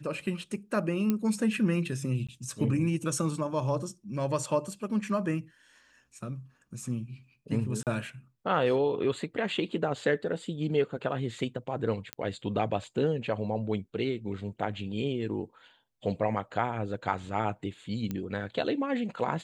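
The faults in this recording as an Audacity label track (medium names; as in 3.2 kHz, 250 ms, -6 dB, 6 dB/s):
1.100000	1.100000	pop -15 dBFS
2.270000	2.290000	dropout 16 ms
7.830000	7.870000	dropout 38 ms
12.130000	12.130000	pop -17 dBFS
18.110000	18.110000	pop -20 dBFS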